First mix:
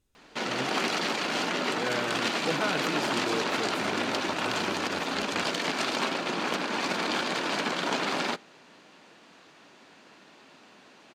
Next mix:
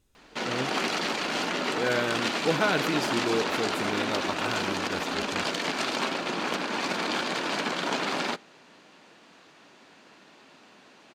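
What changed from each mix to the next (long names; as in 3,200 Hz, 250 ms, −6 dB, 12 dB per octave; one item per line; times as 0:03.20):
speech +5.5 dB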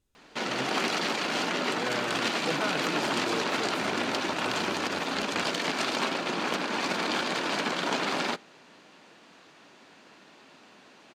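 speech −7.5 dB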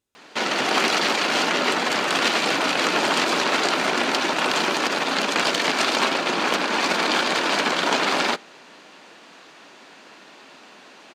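background +8.5 dB
master: add high-pass filter 300 Hz 6 dB per octave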